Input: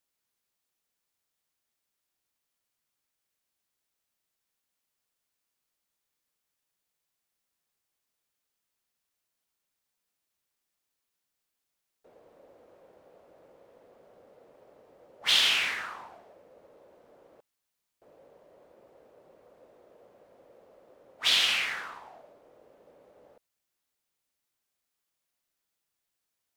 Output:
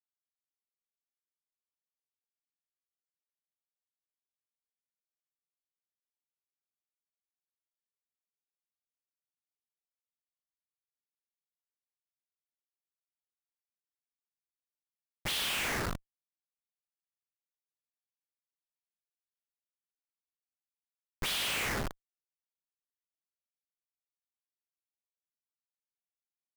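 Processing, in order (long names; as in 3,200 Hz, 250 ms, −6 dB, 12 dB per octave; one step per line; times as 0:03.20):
comparator with hysteresis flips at −34.5 dBFS
level +6.5 dB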